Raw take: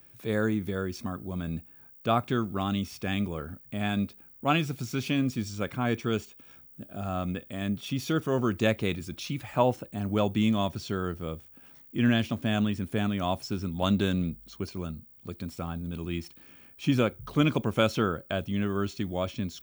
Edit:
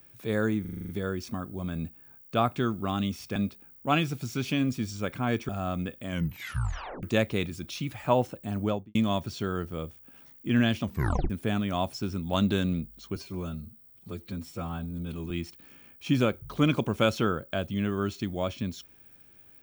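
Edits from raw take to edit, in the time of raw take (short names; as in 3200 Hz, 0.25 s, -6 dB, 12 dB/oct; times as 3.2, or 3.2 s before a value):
0.61 stutter 0.04 s, 8 plays
3.08–3.94 cut
6.07–6.98 cut
7.55 tape stop 0.97 s
10.08–10.44 studio fade out
12.32 tape stop 0.47 s
14.65–16.08 stretch 1.5×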